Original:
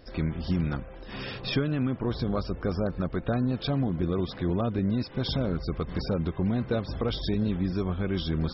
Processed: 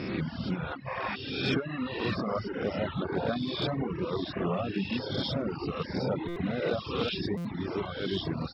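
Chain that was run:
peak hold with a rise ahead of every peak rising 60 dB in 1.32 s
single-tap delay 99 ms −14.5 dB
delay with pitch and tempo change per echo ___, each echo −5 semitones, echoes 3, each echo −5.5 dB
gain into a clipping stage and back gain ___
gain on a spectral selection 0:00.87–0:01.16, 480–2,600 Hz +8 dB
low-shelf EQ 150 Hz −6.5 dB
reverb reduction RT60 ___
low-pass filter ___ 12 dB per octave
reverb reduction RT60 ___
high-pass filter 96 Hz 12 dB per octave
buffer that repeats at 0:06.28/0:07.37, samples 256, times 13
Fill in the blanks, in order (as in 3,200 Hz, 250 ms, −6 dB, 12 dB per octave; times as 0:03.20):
87 ms, 16.5 dB, 1.3 s, 4,500 Hz, 0.81 s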